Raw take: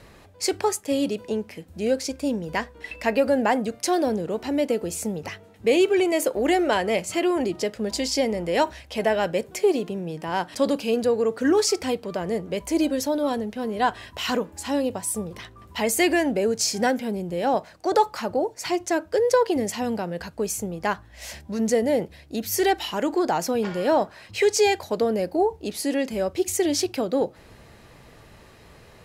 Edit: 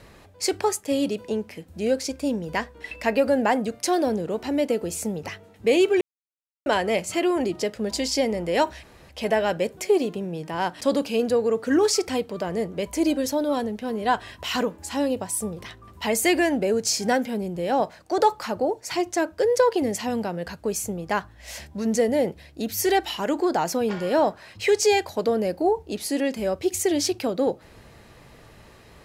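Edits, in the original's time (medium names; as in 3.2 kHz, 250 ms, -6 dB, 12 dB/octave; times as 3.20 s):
6.01–6.66 s: mute
8.83 s: insert room tone 0.26 s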